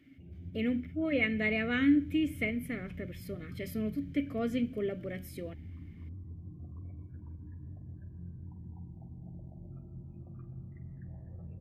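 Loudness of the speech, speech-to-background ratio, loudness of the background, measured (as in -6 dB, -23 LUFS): -32.5 LUFS, 14.5 dB, -47.0 LUFS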